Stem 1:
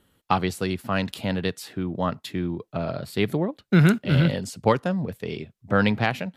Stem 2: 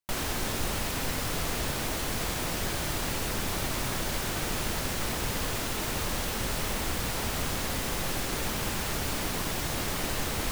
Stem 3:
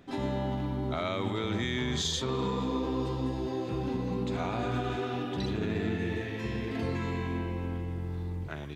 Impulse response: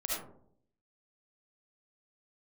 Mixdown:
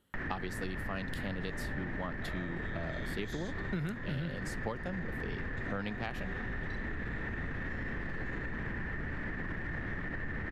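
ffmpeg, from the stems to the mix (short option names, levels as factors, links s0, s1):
-filter_complex "[0:a]volume=0.335[s0];[1:a]lowpass=f=1800:t=q:w=14,adelay=50,volume=1.19[s1];[2:a]highpass=620,adelay=1300,volume=1.33[s2];[s1][s2]amix=inputs=2:normalize=0,acrossover=split=360[s3][s4];[s4]acompressor=threshold=0.0178:ratio=10[s5];[s3][s5]amix=inputs=2:normalize=0,alimiter=level_in=1.5:limit=0.0631:level=0:latency=1:release=41,volume=0.668,volume=1[s6];[s0][s6]amix=inputs=2:normalize=0,acompressor=threshold=0.0224:ratio=6"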